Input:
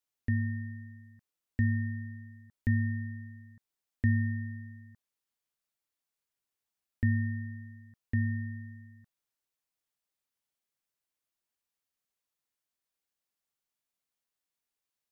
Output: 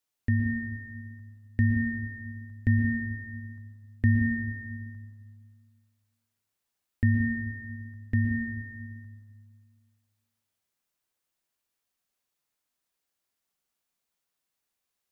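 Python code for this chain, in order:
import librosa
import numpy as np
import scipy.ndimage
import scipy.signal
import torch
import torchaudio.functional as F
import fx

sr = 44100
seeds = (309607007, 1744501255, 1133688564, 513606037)

y = fx.rev_plate(x, sr, seeds[0], rt60_s=1.8, hf_ratio=0.55, predelay_ms=105, drr_db=3.5)
y = y * 10.0 ** (4.0 / 20.0)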